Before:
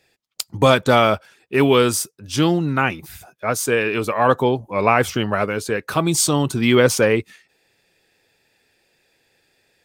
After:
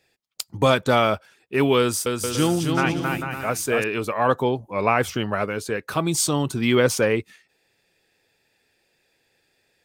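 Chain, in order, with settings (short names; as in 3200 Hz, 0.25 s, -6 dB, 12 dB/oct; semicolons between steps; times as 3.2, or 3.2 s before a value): 1.79–3.84 bouncing-ball echo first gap 0.27 s, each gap 0.65×, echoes 5; gain -4 dB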